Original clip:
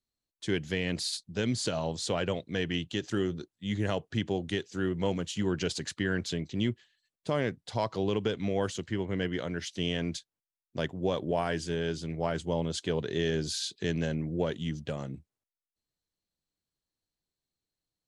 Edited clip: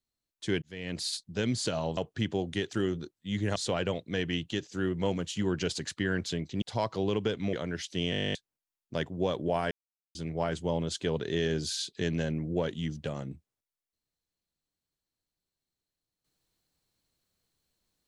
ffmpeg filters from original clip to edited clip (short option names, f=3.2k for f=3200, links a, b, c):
-filter_complex "[0:a]asplit=22[a][b][c][d][e][f][g][h][i][j][k][l][m][n][o][p][q][r][s][t][u][v];[a]atrim=end=0.62,asetpts=PTS-STARTPTS,afade=t=out:st=0.616:d=0.004:c=hsin[w];[b]atrim=start=0.62:end=1.972,asetpts=PTS-STARTPTS,afade=t=in:d=0.47[x];[c]atrim=start=3.928:end=4.672[y];[d]atrim=start=3.078:end=3.932[z];[e]atrim=start=1.968:end=3.082[aa];[f]atrim=start=4.668:end=6.622[ab];[g]atrim=start=7.618:end=8.532[ac];[h]atrim=start=9.358:end=9.962[ad];[i]atrim=start=9.938:end=9.962[ae];[j]atrim=start=9.938:end=9.962[af];[k]atrim=start=9.938:end=9.962[ag];[l]atrim=start=9.938:end=9.962[ah];[m]atrim=start=9.938:end=9.962[ai];[n]atrim=start=9.938:end=9.962[aj];[o]atrim=start=9.938:end=9.962[ak];[p]atrim=start=9.938:end=9.962[al];[q]atrim=start=9.938:end=9.962[am];[r]atrim=start=9.938:end=9.962[an];[s]atrim=start=9.938:end=9.962[ao];[t]atrim=start=10.178:end=11.54,asetpts=PTS-STARTPTS,afade=t=out:st=1.358:d=0.004:c=hsin[ap];[u]atrim=start=11.54:end=11.98,asetpts=PTS-STARTPTS,volume=0[aq];[v]atrim=start=11.98,asetpts=PTS-STARTPTS,afade=t=in:d=0.004:c=hsin[ar];[w][x]concat=n=2:v=0:a=1[as];[as][y]acrossfade=d=0.004:c1=hsin:c2=hsin[at];[at][z]acrossfade=d=0.004:c1=hsin:c2=hsin[au];[au][aa]acrossfade=d=0.004:c1=hsin:c2=hsin[av];[av][ab]acrossfade=d=0.004:c1=hsin:c2=hsin[aw];[aw][ac]acrossfade=d=0.004:c1=hsin:c2=hsin[ax];[ax][ad]acrossfade=d=0.004:c1=hsin:c2=hsin[ay];[ay][ae]acrossfade=d=0.004:c1=hsin:c2=hsin[az];[az][af]acrossfade=d=0.004:c1=hsin:c2=hsin[ba];[ba][ag]acrossfade=d=0.004:c1=hsin:c2=hsin[bb];[bb][ah]acrossfade=d=0.004:c1=hsin:c2=hsin[bc];[bc][ai]acrossfade=d=0.004:c1=hsin:c2=hsin[bd];[bd][aj]acrossfade=d=0.004:c1=hsin:c2=hsin[be];[be][ak]acrossfade=d=0.004:c1=hsin:c2=hsin[bf];[bf][al]acrossfade=d=0.004:c1=hsin:c2=hsin[bg];[bg][am]acrossfade=d=0.004:c1=hsin:c2=hsin[bh];[bh][an]acrossfade=d=0.004:c1=hsin:c2=hsin[bi];[bi][ao]acrossfade=d=0.004:c1=hsin:c2=hsin[bj];[ap][aq][ar]concat=n=3:v=0:a=1[bk];[bj][bk]acrossfade=d=0.004:c1=hsin:c2=hsin"